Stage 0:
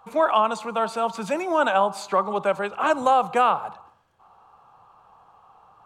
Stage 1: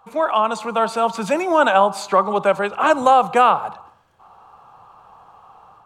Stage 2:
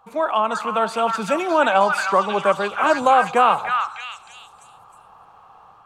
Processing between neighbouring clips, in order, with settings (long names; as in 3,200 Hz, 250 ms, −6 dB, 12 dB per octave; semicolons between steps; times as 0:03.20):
automatic gain control gain up to 7 dB
echo through a band-pass that steps 313 ms, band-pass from 1,700 Hz, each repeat 0.7 octaves, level 0 dB; level −2 dB